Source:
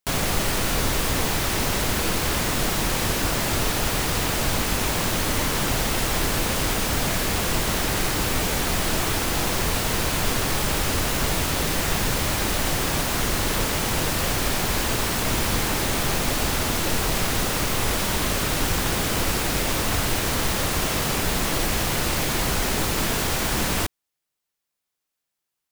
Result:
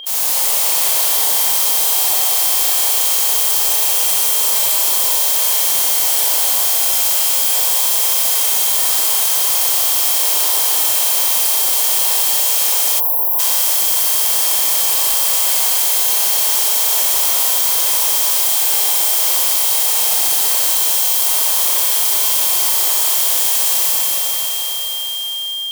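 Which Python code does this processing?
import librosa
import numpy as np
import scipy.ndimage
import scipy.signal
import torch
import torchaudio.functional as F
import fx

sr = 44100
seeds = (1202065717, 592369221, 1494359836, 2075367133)

y = fx.spec_clip(x, sr, under_db=21)
y = scipy.signal.lfilter([1.0, -0.97], [1.0], y)
y = y + 10.0 ** (-45.0 / 20.0) * np.sin(2.0 * np.pi * 3200.0 * np.arange(len(y)) / sr)
y = fx.band_shelf(y, sr, hz=640.0, db=13.0, octaves=1.7)
y = fx.rev_schroeder(y, sr, rt60_s=3.8, comb_ms=30, drr_db=-9.5)
y = fx.spec_erase(y, sr, start_s=13.0, length_s=0.39, low_hz=1100.0, high_hz=11000.0)
y = fx.env_flatten(y, sr, amount_pct=50)
y = F.gain(torch.from_numpy(y), -3.0).numpy()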